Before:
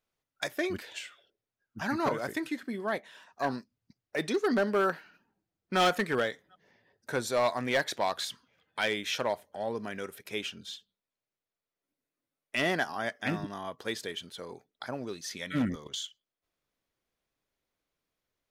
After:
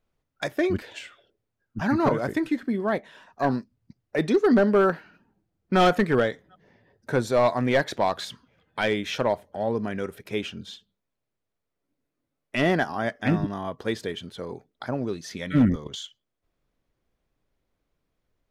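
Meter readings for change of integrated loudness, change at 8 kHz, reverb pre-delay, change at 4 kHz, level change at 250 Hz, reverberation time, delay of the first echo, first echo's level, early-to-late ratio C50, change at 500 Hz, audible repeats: +7.0 dB, −2.0 dB, no reverb audible, +0.5 dB, +10.0 dB, no reverb audible, no echo audible, no echo audible, no reverb audible, +7.5 dB, no echo audible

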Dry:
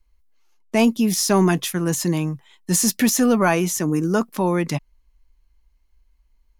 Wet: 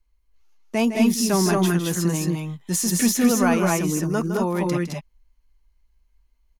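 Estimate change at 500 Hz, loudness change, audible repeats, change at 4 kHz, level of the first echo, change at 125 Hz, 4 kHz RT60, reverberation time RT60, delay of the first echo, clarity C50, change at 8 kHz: −2.0 dB, −1.5 dB, 2, −2.0 dB, −10.0 dB, −0.5 dB, no reverb audible, no reverb audible, 159 ms, no reverb audible, −2.0 dB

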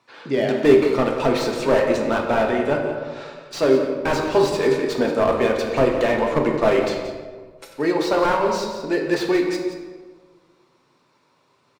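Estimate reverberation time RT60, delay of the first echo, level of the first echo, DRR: 1.5 s, 176 ms, −11.0 dB, 1.0 dB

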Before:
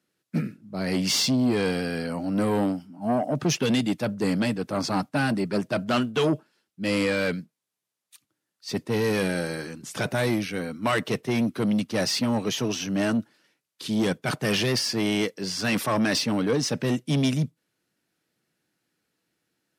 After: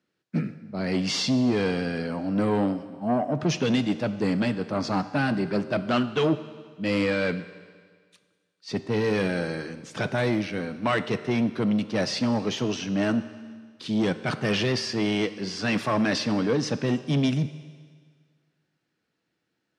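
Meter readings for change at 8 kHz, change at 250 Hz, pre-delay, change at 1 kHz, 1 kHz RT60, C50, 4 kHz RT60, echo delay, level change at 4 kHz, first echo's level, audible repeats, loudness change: −7.0 dB, 0.0 dB, 13 ms, 0.0 dB, 1.7 s, 13.0 dB, 1.7 s, no echo audible, −3.0 dB, no echo audible, no echo audible, −0.5 dB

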